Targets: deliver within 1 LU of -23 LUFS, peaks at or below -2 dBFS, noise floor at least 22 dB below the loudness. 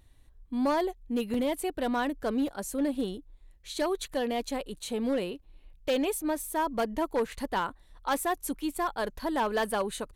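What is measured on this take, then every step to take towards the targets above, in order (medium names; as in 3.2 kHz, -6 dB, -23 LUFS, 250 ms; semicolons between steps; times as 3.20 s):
clipped samples 1.5%; clipping level -22.0 dBFS; dropouts 2; longest dropout 2.9 ms; loudness -31.0 LUFS; peak level -22.0 dBFS; loudness target -23.0 LUFS
-> clip repair -22 dBFS; interpolate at 1.34/2.48 s, 2.9 ms; trim +8 dB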